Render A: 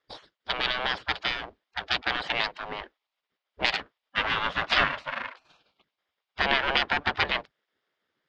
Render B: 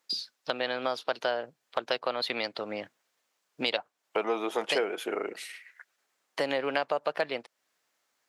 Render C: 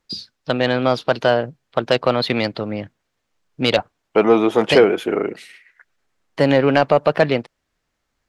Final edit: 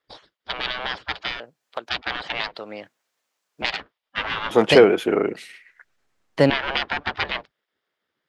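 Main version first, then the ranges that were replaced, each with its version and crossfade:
A
0:01.40–0:01.89: punch in from B
0:02.56–0:03.62: punch in from B
0:04.51–0:06.50: punch in from C

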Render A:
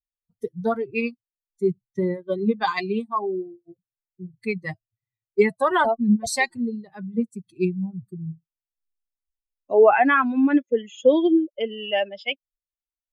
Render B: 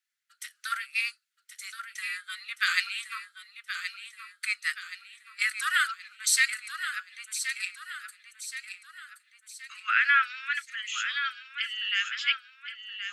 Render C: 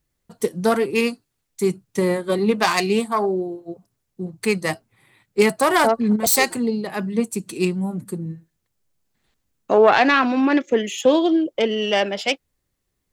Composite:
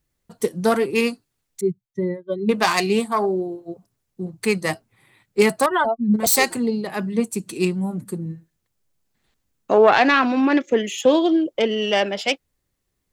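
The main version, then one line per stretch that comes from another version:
C
0:01.61–0:02.49: punch in from A
0:05.66–0:06.14: punch in from A
not used: B

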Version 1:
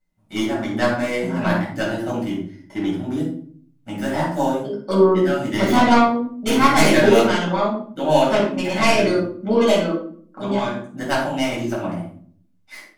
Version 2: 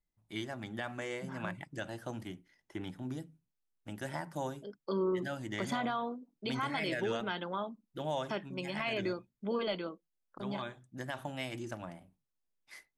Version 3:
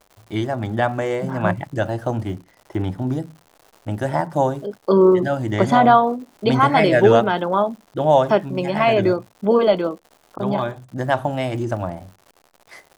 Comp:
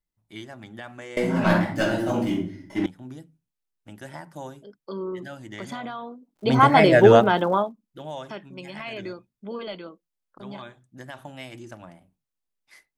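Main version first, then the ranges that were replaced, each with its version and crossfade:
2
0:01.17–0:02.86: punch in from 1
0:06.47–0:07.61: punch in from 3, crossfade 0.24 s

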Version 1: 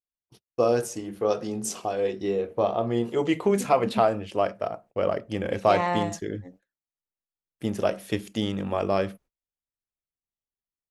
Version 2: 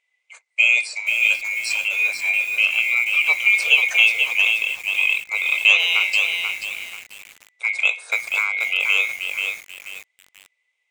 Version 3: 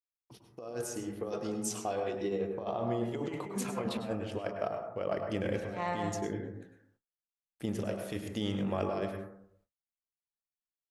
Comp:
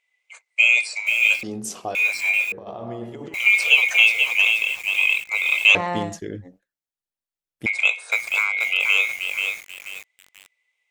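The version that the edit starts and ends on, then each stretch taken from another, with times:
2
0:01.43–0:01.95: punch in from 1
0:02.52–0:03.34: punch in from 3
0:05.75–0:07.66: punch in from 1

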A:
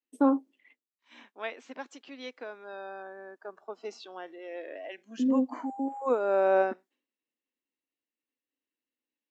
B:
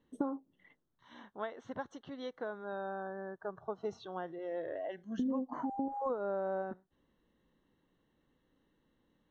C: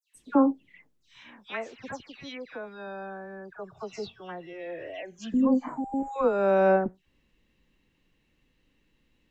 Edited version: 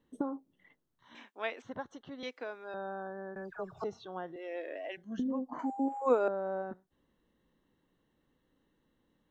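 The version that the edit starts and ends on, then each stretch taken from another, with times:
B
0:01.15–0:01.62: punch in from A
0:02.23–0:02.74: punch in from A
0:03.36–0:03.84: punch in from C
0:04.36–0:04.97: punch in from A
0:05.59–0:06.28: punch in from A

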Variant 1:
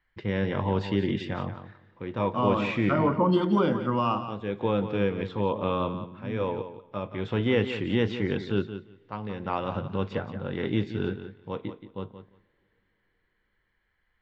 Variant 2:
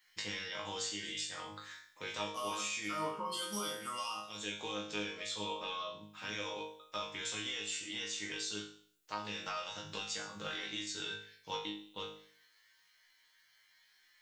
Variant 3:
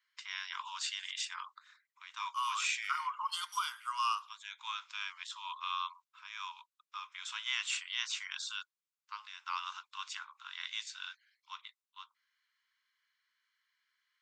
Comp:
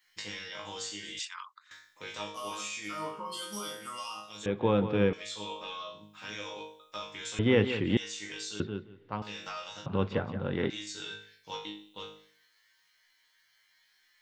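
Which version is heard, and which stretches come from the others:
2
0:01.19–0:01.71: punch in from 3
0:04.46–0:05.13: punch in from 1
0:07.39–0:07.97: punch in from 1
0:08.60–0:09.22: punch in from 1
0:09.86–0:10.70: punch in from 1

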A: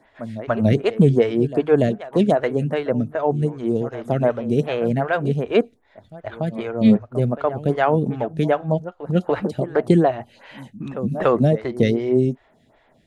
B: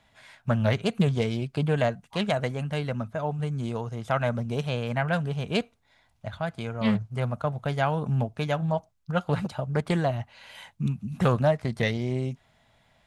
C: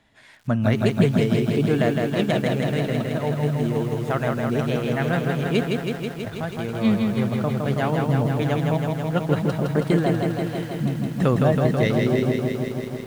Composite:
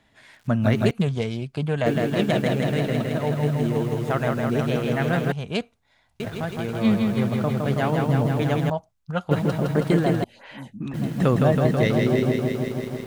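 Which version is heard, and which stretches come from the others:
C
0:00.91–0:01.86: punch in from B
0:05.32–0:06.20: punch in from B
0:08.70–0:09.31: punch in from B
0:10.24–0:10.94: punch in from A

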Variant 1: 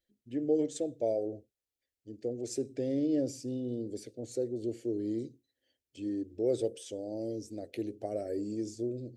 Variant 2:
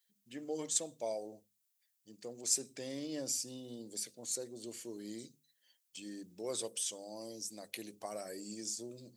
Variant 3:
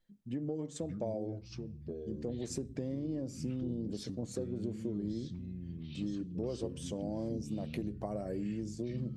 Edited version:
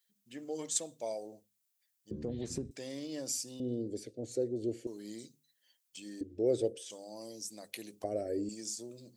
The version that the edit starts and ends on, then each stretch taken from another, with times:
2
0:02.11–0:02.71: punch in from 3
0:03.60–0:04.87: punch in from 1
0:06.21–0:06.90: punch in from 1
0:08.04–0:08.49: punch in from 1

